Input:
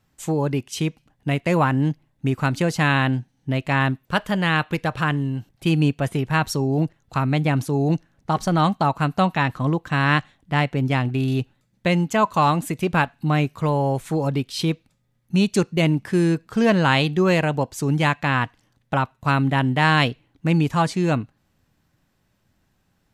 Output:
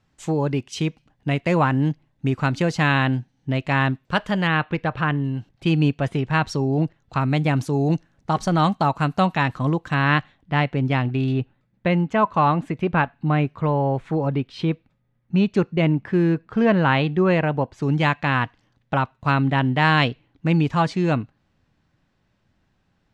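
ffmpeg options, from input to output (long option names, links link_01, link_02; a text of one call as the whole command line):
ffmpeg -i in.wav -af "asetnsamples=nb_out_samples=441:pad=0,asendcmd='4.47 lowpass f 2900;5.24 lowpass f 4900;7.21 lowpass f 8300;9.94 lowpass f 4000;11.32 lowpass f 2400;17.82 lowpass f 4700',lowpass=6100" out.wav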